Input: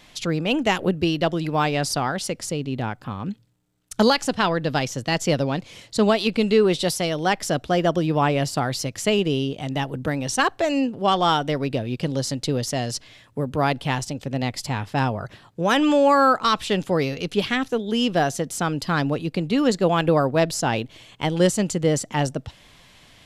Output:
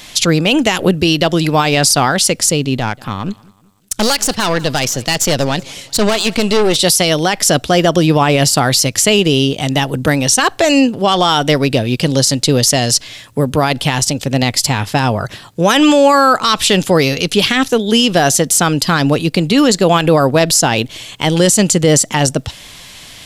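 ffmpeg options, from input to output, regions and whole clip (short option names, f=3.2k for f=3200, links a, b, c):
-filter_complex "[0:a]asettb=1/sr,asplit=3[a][b][c];[a]atrim=end=2.774[d];[b]atrim=start=2.77:end=6.76,asetpts=PTS-STARTPTS,afade=t=in:d=0.004:c=qsin,afade=t=out:st=3.986:d=0.004:c=qsin,aeval=exprs='(tanh(10*val(0)+0.7)-tanh(0.7))/10':c=same,aecho=1:1:188|376|564:0.0631|0.0284|0.0128,atrim=end_sample=175959[e];[c]atrim=start=6.756[f];[d][e]acrossfade=d=0.004:c1=hsin:c2=qsin[g];[g][f]acrossfade=d=0.004:c1=qsin:c2=hsin,highshelf=f=3.3k:g=11.5,alimiter=level_in=12dB:limit=-1dB:release=50:level=0:latency=1,volume=-1dB"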